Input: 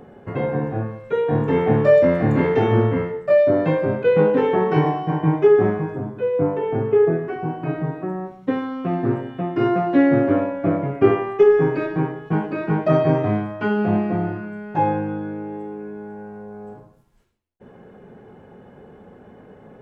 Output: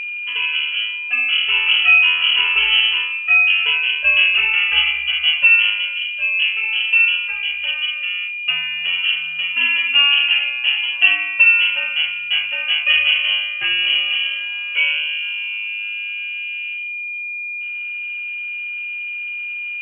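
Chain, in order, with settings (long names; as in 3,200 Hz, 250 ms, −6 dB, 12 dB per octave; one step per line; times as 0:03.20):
steady tone 680 Hz −25 dBFS
voice inversion scrambler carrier 3,100 Hz
level +1 dB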